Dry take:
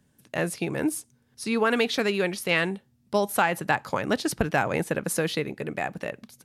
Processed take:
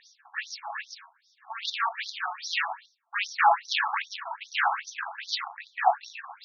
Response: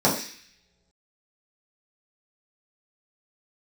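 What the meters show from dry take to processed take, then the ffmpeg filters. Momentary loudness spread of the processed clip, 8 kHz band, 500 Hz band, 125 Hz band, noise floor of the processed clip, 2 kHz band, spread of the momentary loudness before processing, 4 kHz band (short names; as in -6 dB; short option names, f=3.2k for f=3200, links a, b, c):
15 LU, -9.5 dB, -13.5 dB, under -40 dB, -68 dBFS, -1.5 dB, 9 LU, +0.5 dB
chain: -filter_complex "[1:a]atrim=start_sample=2205,atrim=end_sample=4410[a];[0:a][a]afir=irnorm=-1:irlink=0,asplit=2[b][c];[c]aeval=exprs='3.55*sin(PI/2*4.47*val(0)/3.55)':c=same,volume=-7dB[d];[b][d]amix=inputs=2:normalize=0,bandreject=f=50:t=h:w=6,bandreject=f=100:t=h:w=6,bandreject=f=150:t=h:w=6,bandreject=f=200:t=h:w=6,dynaudnorm=f=110:g=7:m=5.5dB,bass=f=250:g=10,treble=f=4k:g=5,areverse,acompressor=threshold=-12dB:ratio=10,areverse,afftfilt=real='re*between(b*sr/1024,940*pow(4900/940,0.5+0.5*sin(2*PI*2.5*pts/sr))/1.41,940*pow(4900/940,0.5+0.5*sin(2*PI*2.5*pts/sr))*1.41)':imag='im*between(b*sr/1024,940*pow(4900/940,0.5+0.5*sin(2*PI*2.5*pts/sr))/1.41,940*pow(4900/940,0.5+0.5*sin(2*PI*2.5*pts/sr))*1.41)':win_size=1024:overlap=0.75,volume=1.5dB"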